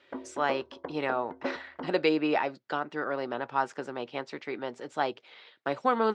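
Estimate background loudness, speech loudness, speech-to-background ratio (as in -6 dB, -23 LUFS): -41.0 LUFS, -32.0 LUFS, 9.0 dB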